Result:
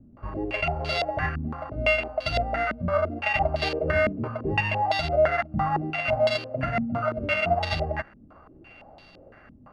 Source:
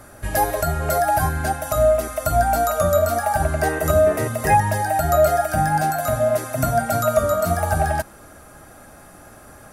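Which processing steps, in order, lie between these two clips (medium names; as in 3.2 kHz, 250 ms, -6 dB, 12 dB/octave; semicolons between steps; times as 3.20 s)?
sorted samples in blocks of 16 samples; careless resampling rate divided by 6×, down filtered, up hold; step-sequenced low-pass 5.9 Hz 230–3900 Hz; trim -8 dB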